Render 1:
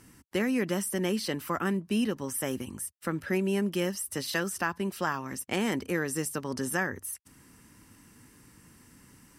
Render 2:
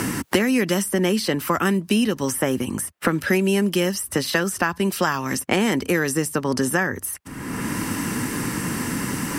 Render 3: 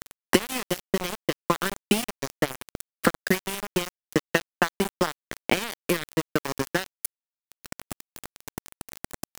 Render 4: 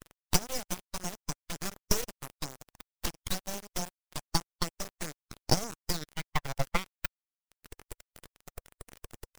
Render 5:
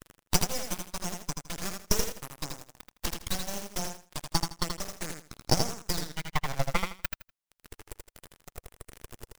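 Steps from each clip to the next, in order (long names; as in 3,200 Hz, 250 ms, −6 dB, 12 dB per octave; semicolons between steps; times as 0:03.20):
multiband upward and downward compressor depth 100%; level +8.5 dB
transient designer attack +9 dB, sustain −5 dB; high-shelf EQ 6,500 Hz +4 dB; centre clipping without the shift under −13.5 dBFS; level −8 dB
spectral dynamics exaggerated over time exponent 1.5; high-pass filter sweep 2,700 Hz → 250 Hz, 0:05.88–0:06.66; full-wave rectification
repeating echo 81 ms, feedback 22%, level −5 dB; level +1 dB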